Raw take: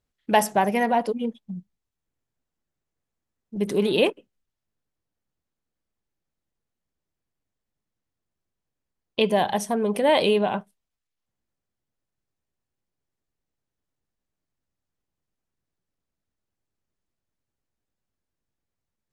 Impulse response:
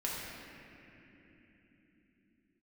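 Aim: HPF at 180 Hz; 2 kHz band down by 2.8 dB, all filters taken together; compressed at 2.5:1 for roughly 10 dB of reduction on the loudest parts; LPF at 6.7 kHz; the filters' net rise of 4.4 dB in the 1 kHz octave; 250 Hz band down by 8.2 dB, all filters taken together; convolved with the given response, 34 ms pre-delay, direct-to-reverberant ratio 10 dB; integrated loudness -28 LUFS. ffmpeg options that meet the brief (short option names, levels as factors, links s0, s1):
-filter_complex "[0:a]highpass=180,lowpass=6700,equalizer=f=250:t=o:g=-9,equalizer=f=1000:t=o:g=7.5,equalizer=f=2000:t=o:g=-5.5,acompressor=threshold=0.0447:ratio=2.5,asplit=2[s0][s1];[1:a]atrim=start_sample=2205,adelay=34[s2];[s1][s2]afir=irnorm=-1:irlink=0,volume=0.188[s3];[s0][s3]amix=inputs=2:normalize=0,volume=1.26"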